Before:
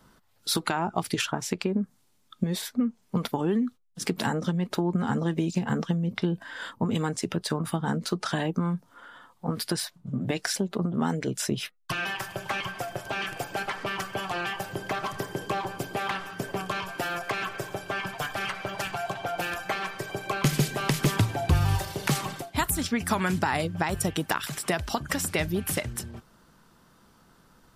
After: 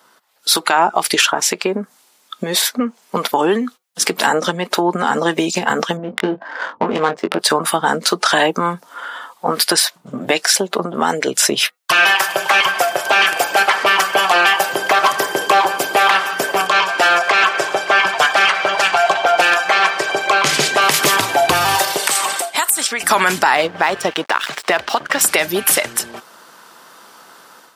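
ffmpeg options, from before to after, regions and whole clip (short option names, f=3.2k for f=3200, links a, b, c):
-filter_complex "[0:a]asettb=1/sr,asplit=3[a][b][c];[a]atrim=end=5.974[d];[b]atrim=start=5.97:end=7.39,asetpts=PTS-STARTPTS,afade=t=in:d=0.004:c=qsin,afade=t=out:st=1.416:d=0.004:c=qsin,adynamicsmooth=sensitivity=2:basefreq=720,asplit=2[e][f];[f]adelay=21,volume=-7.5dB[g];[e][g]amix=inputs=2:normalize=0,atrim=end_sample=62622[h];[c]atrim=start=7.386[i];[d][h]acrossfade=d=0.004:c1=hsin:c2=qsin[j];[j][i]acrossfade=d=0.004:c1=qsin:c2=hsin,asettb=1/sr,asplit=3[k][l][m];[k]atrim=end=16.674[n];[l]atrim=start=16.67:end=20.82,asetpts=PTS-STARTPTS,afade=t=in:d=0.004:c=qsin,afade=t=out:st=4.146:d=0.004:c=qsin,lowpass=7.4k,aecho=1:1:581:0.0841,atrim=end_sample=183015[o];[m]atrim=start=20.816[p];[n][o]acrossfade=d=0.004:c1=hsin:c2=qsin[q];[q][p]acrossfade=d=0.004:c1=qsin:c2=hsin,asettb=1/sr,asplit=3[r][s][t];[r]atrim=end=21.974[u];[s]atrim=start=21.97:end=23.03,asetpts=PTS-STARTPTS,afade=t=in:d=0.004:c=qsin,afade=t=out:st=1.056:d=0.004:c=qsin,highpass=f=460:p=1,equalizer=f=8.4k:t=o:w=0.26:g=11.5,acompressor=threshold=-33dB:ratio=3:attack=3.2:release=140:knee=1:detection=peak[v];[t]atrim=start=23.026[w];[u][v]acrossfade=d=0.004:c1=hsin:c2=qsin[x];[x][w]acrossfade=d=0.004:c1=qsin:c2=hsin,asettb=1/sr,asplit=3[y][z][aa];[y]atrim=end=23.554[ab];[z]atrim=start=23.55:end=25.21,asetpts=PTS-STARTPTS,afade=t=in:d=0.004:c=qsin,afade=t=out:st=1.656:d=0.004:c=qsin,lowpass=3.8k,aeval=exprs='sgn(val(0))*max(abs(val(0))-0.00531,0)':c=same[ac];[aa]atrim=start=25.206[ad];[ab][ac]acrossfade=d=0.004:c1=hsin:c2=qsin[ae];[ae][ad]acrossfade=d=0.004:c1=qsin:c2=hsin,highpass=540,dynaudnorm=f=400:g=3:m=10dB,alimiter=level_in=10.5dB:limit=-1dB:release=50:level=0:latency=1,volume=-1dB"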